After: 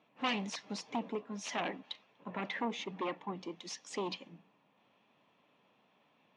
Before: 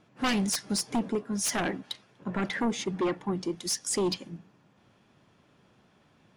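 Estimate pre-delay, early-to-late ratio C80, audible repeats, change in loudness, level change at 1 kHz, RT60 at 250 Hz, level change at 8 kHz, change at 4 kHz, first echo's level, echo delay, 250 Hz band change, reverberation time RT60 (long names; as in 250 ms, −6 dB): no reverb audible, no reverb audible, no echo audible, −9.5 dB, −4.0 dB, no reverb audible, −16.5 dB, −8.0 dB, no echo audible, no echo audible, −11.0 dB, no reverb audible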